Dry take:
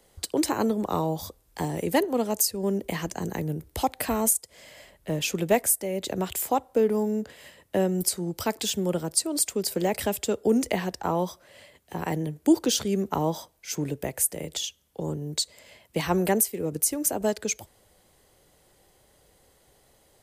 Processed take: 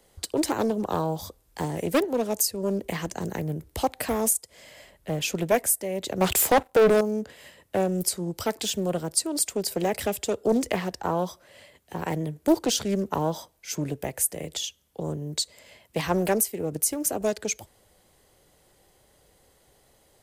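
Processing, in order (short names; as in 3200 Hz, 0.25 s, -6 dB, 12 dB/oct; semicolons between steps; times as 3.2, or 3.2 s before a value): 6.21–7.01 sample leveller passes 3; Doppler distortion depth 0.45 ms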